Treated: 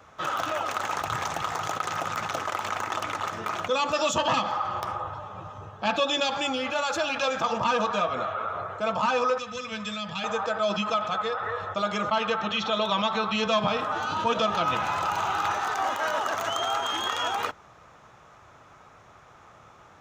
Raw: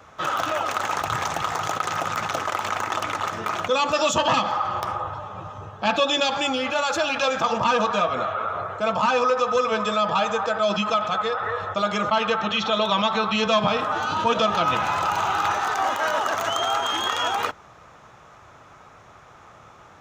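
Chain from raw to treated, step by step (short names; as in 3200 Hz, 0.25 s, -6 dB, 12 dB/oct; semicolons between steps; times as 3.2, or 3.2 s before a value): 9.38–10.24 band shelf 640 Hz -12.5 dB 2.5 oct; gain -4 dB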